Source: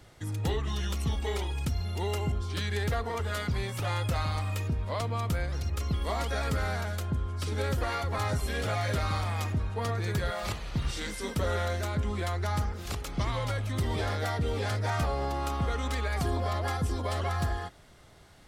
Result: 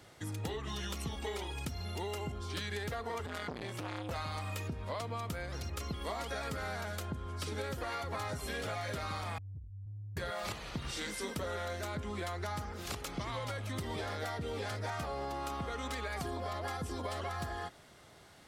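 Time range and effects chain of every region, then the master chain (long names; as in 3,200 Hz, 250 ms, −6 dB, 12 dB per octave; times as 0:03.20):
0:03.26–0:04.11: high-pass filter 56 Hz + high-shelf EQ 8,200 Hz −7.5 dB + saturating transformer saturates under 690 Hz
0:09.38–0:10.17: variable-slope delta modulation 64 kbit/s + inverse Chebyshev low-pass filter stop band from 560 Hz, stop band 80 dB + downward compressor, threshold −36 dBFS
whole clip: high-pass filter 170 Hz 6 dB per octave; downward compressor, threshold −35 dBFS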